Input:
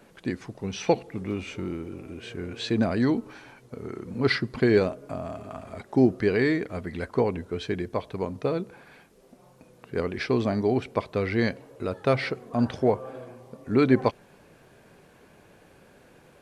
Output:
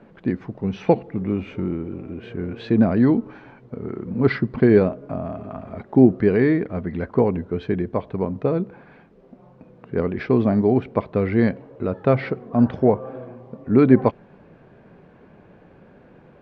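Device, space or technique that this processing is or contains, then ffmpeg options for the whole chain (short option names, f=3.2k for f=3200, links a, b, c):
phone in a pocket: -af "lowpass=3.2k,equalizer=f=190:t=o:w=0.94:g=4.5,highshelf=f=2.2k:g=-11.5,volume=5dB"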